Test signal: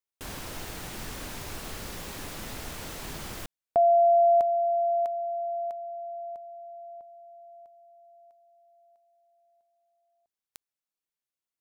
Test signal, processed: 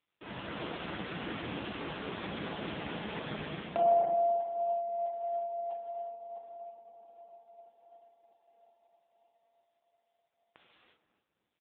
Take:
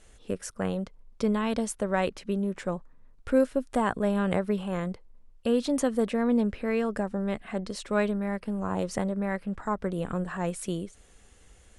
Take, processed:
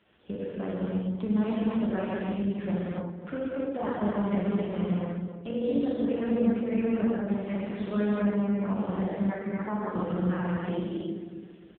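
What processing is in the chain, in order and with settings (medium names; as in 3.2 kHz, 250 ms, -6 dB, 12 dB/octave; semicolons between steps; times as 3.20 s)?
peaking EQ 87 Hz -9.5 dB 0.37 oct; compression 3:1, threshold -32 dBFS; doubling 39 ms -7 dB; on a send: filtered feedback delay 270 ms, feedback 38%, low-pass 820 Hz, level -7 dB; on the sum: gated-style reverb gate 380 ms flat, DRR -6 dB; trim -1.5 dB; AMR-NB 5.9 kbps 8 kHz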